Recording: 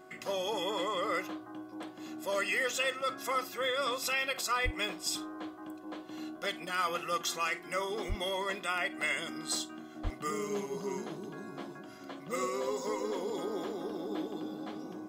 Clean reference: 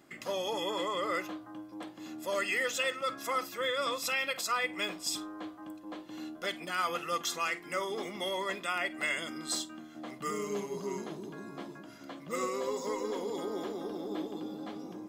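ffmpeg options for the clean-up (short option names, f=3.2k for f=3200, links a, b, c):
-filter_complex "[0:a]bandreject=f=371.9:t=h:w=4,bandreject=f=743.8:t=h:w=4,bandreject=f=1.1157k:t=h:w=4,bandreject=f=1.4876k:t=h:w=4,bandreject=f=640:w=30,asplit=3[a][b][c];[a]afade=t=out:st=4.64:d=0.02[d];[b]highpass=f=140:w=0.5412,highpass=f=140:w=1.3066,afade=t=in:st=4.64:d=0.02,afade=t=out:st=4.76:d=0.02[e];[c]afade=t=in:st=4.76:d=0.02[f];[d][e][f]amix=inputs=3:normalize=0,asplit=3[g][h][i];[g]afade=t=out:st=8.08:d=0.02[j];[h]highpass=f=140:w=0.5412,highpass=f=140:w=1.3066,afade=t=in:st=8.08:d=0.02,afade=t=out:st=8.2:d=0.02[k];[i]afade=t=in:st=8.2:d=0.02[l];[j][k][l]amix=inputs=3:normalize=0,asplit=3[m][n][o];[m]afade=t=out:st=10.03:d=0.02[p];[n]highpass=f=140:w=0.5412,highpass=f=140:w=1.3066,afade=t=in:st=10.03:d=0.02,afade=t=out:st=10.15:d=0.02[q];[o]afade=t=in:st=10.15:d=0.02[r];[p][q][r]amix=inputs=3:normalize=0"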